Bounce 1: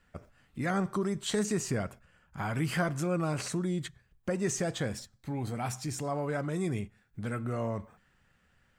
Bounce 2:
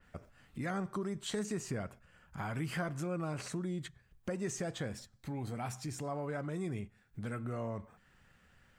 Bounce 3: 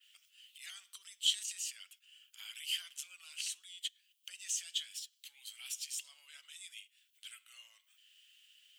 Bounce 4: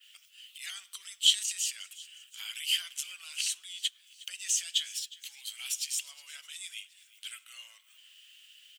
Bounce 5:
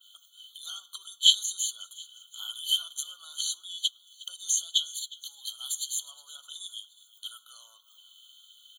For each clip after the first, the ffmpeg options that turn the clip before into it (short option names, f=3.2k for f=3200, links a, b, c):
-af "acompressor=threshold=-54dB:ratio=1.5,adynamicequalizer=threshold=0.00112:dfrequency=3400:dqfactor=0.7:tfrequency=3400:tqfactor=0.7:attack=5:release=100:ratio=0.375:range=2:mode=cutabove:tftype=highshelf,volume=3dB"
-af "highpass=f=3k:t=q:w=8.3,aderivative,volume=6dB"
-af "aecho=1:1:361|722|1083|1444:0.1|0.048|0.023|0.0111,volume=8dB"
-af "afftfilt=real='re*eq(mod(floor(b*sr/1024/1500),2),0)':imag='im*eq(mod(floor(b*sr/1024/1500),2),0)':win_size=1024:overlap=0.75,volume=4.5dB"